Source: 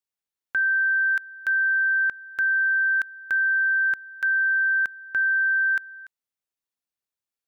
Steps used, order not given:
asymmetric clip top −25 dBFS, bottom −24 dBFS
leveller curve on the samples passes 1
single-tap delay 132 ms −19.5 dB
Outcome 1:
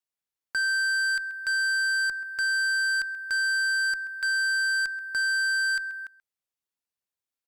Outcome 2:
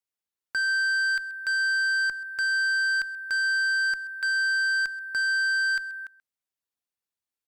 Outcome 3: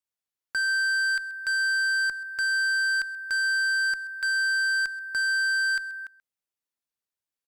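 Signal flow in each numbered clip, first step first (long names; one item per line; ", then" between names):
leveller curve on the samples, then single-tap delay, then asymmetric clip
asymmetric clip, then leveller curve on the samples, then single-tap delay
leveller curve on the samples, then asymmetric clip, then single-tap delay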